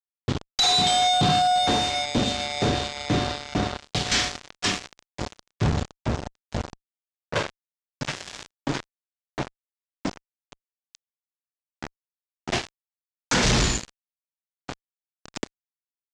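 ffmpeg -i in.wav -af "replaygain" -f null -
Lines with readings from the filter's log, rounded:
track_gain = +3.3 dB
track_peak = 0.140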